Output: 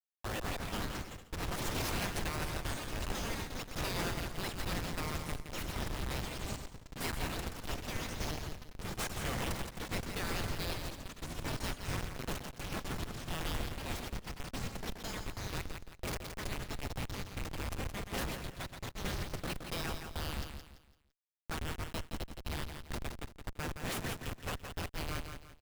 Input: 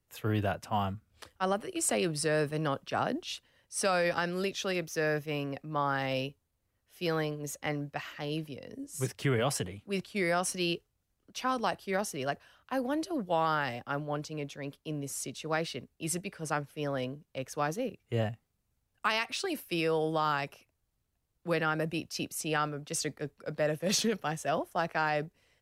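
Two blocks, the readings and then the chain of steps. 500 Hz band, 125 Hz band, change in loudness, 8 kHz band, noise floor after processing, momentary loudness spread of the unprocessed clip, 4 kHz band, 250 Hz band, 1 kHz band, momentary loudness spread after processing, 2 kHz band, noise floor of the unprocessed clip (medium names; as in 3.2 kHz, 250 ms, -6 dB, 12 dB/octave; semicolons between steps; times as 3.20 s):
-11.5 dB, -3.0 dB, -7.0 dB, -6.5 dB, -59 dBFS, 10 LU, -3.0 dB, -7.5 dB, -9.0 dB, 7 LU, -6.0 dB, -80 dBFS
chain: spectral gate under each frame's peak -20 dB weak; reverb removal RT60 1.5 s; Schmitt trigger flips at -43 dBFS; on a send: feedback delay 169 ms, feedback 33%, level -7 dB; on the sum: ever faster or slower copies 268 ms, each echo +5 st, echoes 3; trim +13.5 dB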